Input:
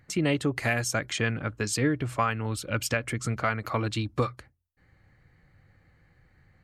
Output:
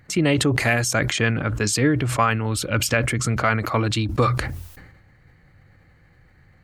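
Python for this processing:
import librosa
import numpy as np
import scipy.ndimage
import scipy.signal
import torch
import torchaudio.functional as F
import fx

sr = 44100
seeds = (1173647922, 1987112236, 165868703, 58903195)

y = fx.sustainer(x, sr, db_per_s=47.0)
y = y * librosa.db_to_amplitude(6.0)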